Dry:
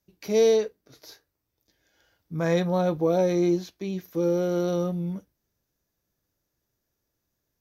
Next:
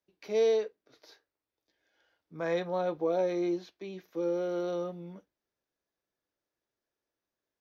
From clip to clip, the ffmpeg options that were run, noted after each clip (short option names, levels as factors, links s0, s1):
-filter_complex "[0:a]acrossover=split=280 4700:gain=0.178 1 0.158[s0][s1][s2];[s0][s1][s2]amix=inputs=3:normalize=0,volume=0.562"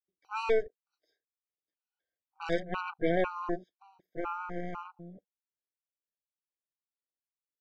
-af "afwtdn=0.00794,aeval=exprs='0.119*(cos(1*acos(clip(val(0)/0.119,-1,1)))-cos(1*PI/2))+0.0211*(cos(4*acos(clip(val(0)/0.119,-1,1)))-cos(4*PI/2))+0.0299*(cos(7*acos(clip(val(0)/0.119,-1,1)))-cos(7*PI/2))+0.00473*(cos(8*acos(clip(val(0)/0.119,-1,1)))-cos(8*PI/2))':c=same,afftfilt=real='re*gt(sin(2*PI*2*pts/sr)*(1-2*mod(floor(b*sr/1024/770),2)),0)':imag='im*gt(sin(2*PI*2*pts/sr)*(1-2*mod(floor(b*sr/1024/770),2)),0)':win_size=1024:overlap=0.75"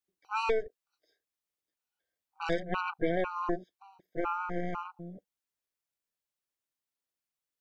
-af "acompressor=threshold=0.0398:ratio=6,volume=1.5"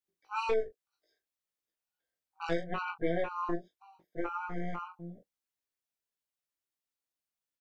-af "aecho=1:1:18|41:0.708|0.355,volume=0.562"